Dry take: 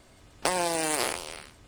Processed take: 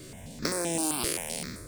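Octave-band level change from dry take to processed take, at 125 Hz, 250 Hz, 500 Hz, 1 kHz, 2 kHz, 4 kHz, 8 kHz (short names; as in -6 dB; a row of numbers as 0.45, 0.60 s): +5.5, +3.5, -3.5, -7.5, -5.0, -1.5, +1.5 dB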